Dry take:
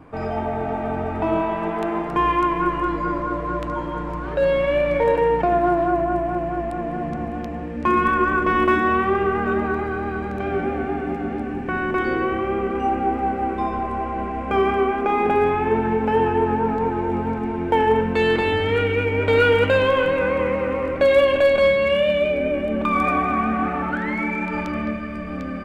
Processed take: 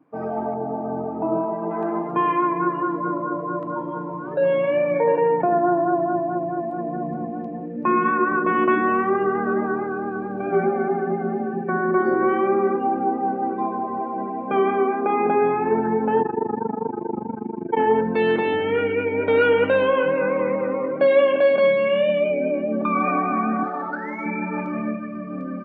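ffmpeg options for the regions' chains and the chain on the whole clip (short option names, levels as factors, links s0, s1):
-filter_complex "[0:a]asettb=1/sr,asplit=3[s0][s1][s2];[s0]atrim=end=0.544[s3];[s1]atrim=start=0.54:end=1.71,asetpts=PTS-STARTPTS,afade=t=in:d=0.004:c=qsin,afade=t=out:st=1.166:d=0.004:c=qsin,lowpass=f=1100:p=1,asplit=2[s4][s5];[s5]adelay=38,volume=0.2[s6];[s4][s6]amix=inputs=2:normalize=0,atrim=end_sample=51597[s7];[s2]atrim=start=1.706[s8];[s3][s7]acrossfade=d=0.004:c1=hsin:c2=qsin[s9];[s9][s8]acrossfade=d=0.004:c1=qsin:c2=hsin,asettb=1/sr,asplit=3[s10][s11][s12];[s10]atrim=end=10.524[s13];[s11]atrim=start=10.52:end=12.76,asetpts=PTS-STARTPTS,afade=t=in:d=0.004:c=qsin,afade=t=out:st=2.236:d=0.004:c=qsin,bandreject=f=50:t=h:w=6,bandreject=f=100:t=h:w=6,bandreject=f=150:t=h:w=6,bandreject=f=200:t=h:w=6,bandreject=f=250:t=h:w=6,bandreject=f=300:t=h:w=6,aecho=1:1:5.2:0.8,atrim=end_sample=98784[s14];[s12]atrim=start=12.756[s15];[s13][s14]acrossfade=d=0.004:c1=hsin:c2=qsin[s16];[s16][s15]acrossfade=d=0.004:c1=qsin:c2=hsin,asettb=1/sr,asplit=3[s17][s18][s19];[s17]atrim=end=16.224[s20];[s18]atrim=start=16.22:end=17.77,asetpts=PTS-STARTPTS,afade=t=in:d=0.004:c=qsin,afade=t=out:st=1.546:d=0.004:c=qsin,lowpass=3500,tremolo=f=25:d=0.974[s21];[s19]atrim=start=17.766[s22];[s20][s21]acrossfade=d=0.004:c1=hsin:c2=qsin[s23];[s23][s22]acrossfade=d=0.004:c1=qsin:c2=hsin,asettb=1/sr,asplit=3[s24][s25][s26];[s24]atrim=end=23.634[s27];[s25]atrim=start=23.63:end=24.26,asetpts=PTS-STARTPTS,afade=t=in:d=0.004:c=qsin,afade=t=out:st=0.626:d=0.004:c=qsin,bass=f=250:g=-13,treble=f=4000:g=-13,adynamicsmooth=sensitivity=2.5:basefreq=1500[s28];[s26]atrim=start=24.256[s29];[s27][s28]acrossfade=d=0.004:c1=hsin:c2=qsin[s30];[s30][s29]acrossfade=d=0.004:c1=qsin:c2=hsin,highpass=f=140:w=0.5412,highpass=f=140:w=1.3066,afftdn=nr=16:nf=-30,highshelf=f=3000:g=-10"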